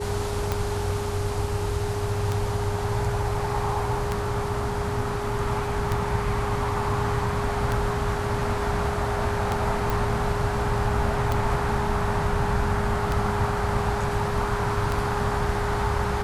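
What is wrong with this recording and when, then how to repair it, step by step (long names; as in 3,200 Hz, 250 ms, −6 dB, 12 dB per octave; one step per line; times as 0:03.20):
scratch tick 33 1/3 rpm −11 dBFS
whistle 410 Hz −30 dBFS
0:09.90: click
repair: click removal
notch filter 410 Hz, Q 30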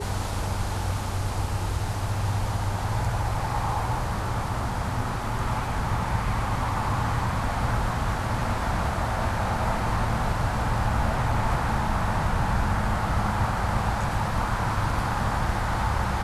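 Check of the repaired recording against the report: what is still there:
none of them is left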